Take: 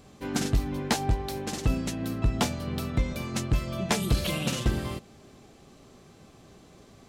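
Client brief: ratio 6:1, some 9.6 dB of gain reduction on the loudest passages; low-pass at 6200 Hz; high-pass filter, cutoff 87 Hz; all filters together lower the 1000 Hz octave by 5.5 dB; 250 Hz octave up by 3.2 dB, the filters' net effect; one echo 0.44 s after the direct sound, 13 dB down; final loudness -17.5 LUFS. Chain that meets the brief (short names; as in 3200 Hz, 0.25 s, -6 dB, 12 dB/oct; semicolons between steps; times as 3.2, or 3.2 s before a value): HPF 87 Hz; LPF 6200 Hz; bell 250 Hz +4.5 dB; bell 1000 Hz -8 dB; compressor 6:1, threshold -31 dBFS; echo 0.44 s -13 dB; gain +18 dB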